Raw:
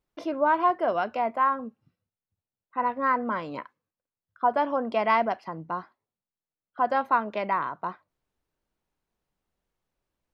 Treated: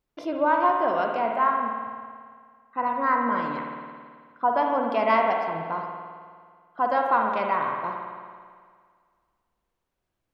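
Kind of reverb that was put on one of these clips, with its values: spring tank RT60 1.9 s, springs 54 ms, chirp 30 ms, DRR 1.5 dB

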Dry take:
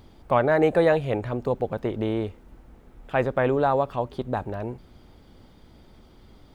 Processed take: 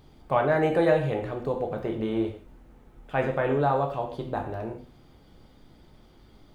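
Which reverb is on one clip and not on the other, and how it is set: gated-style reverb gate 190 ms falling, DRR 2 dB; trim -4.5 dB

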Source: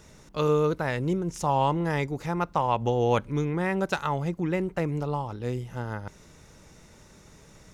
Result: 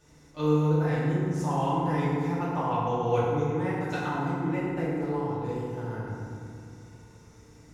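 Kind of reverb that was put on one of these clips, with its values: FDN reverb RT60 2.4 s, low-frequency decay 1.55×, high-frequency decay 0.5×, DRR -10 dB; trim -13.5 dB

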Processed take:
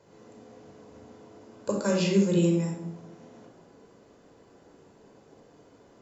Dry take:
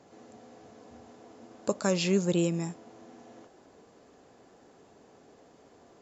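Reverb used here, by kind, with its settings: simulated room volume 2200 m³, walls furnished, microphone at 4.9 m; trim -4.5 dB

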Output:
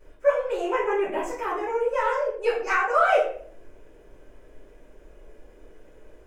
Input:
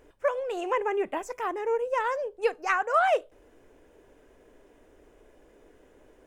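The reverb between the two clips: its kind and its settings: simulated room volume 63 m³, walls mixed, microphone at 2.9 m; trim -9 dB

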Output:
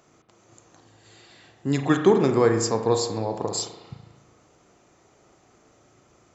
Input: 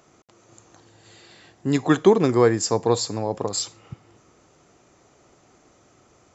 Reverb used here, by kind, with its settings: spring tank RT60 1.1 s, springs 36 ms, chirp 30 ms, DRR 5.5 dB; trim -2.5 dB

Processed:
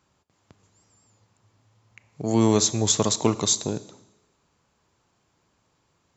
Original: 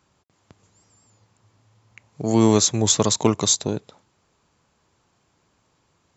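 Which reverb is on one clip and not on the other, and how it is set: Schroeder reverb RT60 1 s, combs from 27 ms, DRR 15.5 dB; trim -3 dB

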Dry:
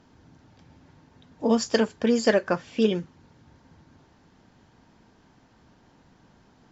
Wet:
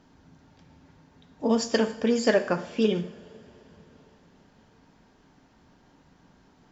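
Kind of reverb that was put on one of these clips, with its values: two-slope reverb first 0.58 s, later 4.2 s, from -20 dB, DRR 8 dB; trim -1.5 dB

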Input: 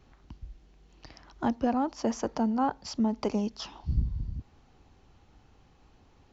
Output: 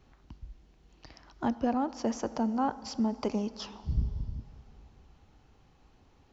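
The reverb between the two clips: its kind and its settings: plate-style reverb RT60 3.3 s, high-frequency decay 0.75×, DRR 15.5 dB; trim -2 dB

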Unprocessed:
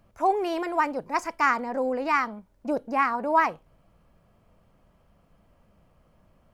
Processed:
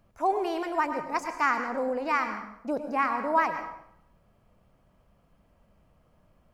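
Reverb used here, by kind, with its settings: plate-style reverb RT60 0.73 s, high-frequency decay 0.8×, pre-delay 90 ms, DRR 7.5 dB; trim -3 dB

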